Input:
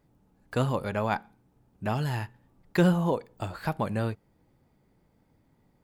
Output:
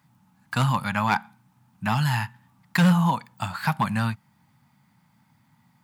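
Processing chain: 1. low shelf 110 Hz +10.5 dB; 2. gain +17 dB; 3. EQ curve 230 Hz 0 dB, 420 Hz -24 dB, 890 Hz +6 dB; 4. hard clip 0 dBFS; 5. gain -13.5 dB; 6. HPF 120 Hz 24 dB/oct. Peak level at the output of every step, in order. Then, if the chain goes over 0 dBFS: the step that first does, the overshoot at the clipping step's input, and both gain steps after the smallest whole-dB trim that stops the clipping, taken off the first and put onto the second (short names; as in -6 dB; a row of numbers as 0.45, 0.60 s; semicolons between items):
-7.0, +10.0, +8.0, 0.0, -13.5, -8.5 dBFS; step 2, 8.0 dB; step 2 +9 dB, step 5 -5.5 dB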